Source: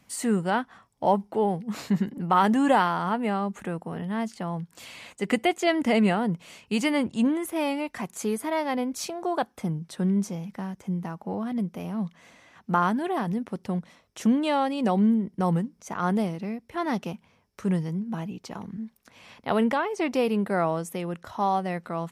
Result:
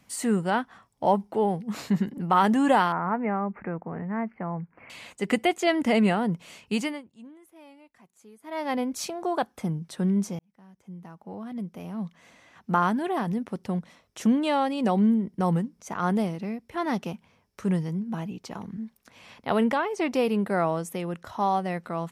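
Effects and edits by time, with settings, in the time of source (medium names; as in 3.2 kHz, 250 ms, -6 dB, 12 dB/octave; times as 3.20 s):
2.92–4.90 s: elliptic low-pass 2.3 kHz
6.73–8.71 s: dip -23.5 dB, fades 0.29 s
10.39–12.71 s: fade in linear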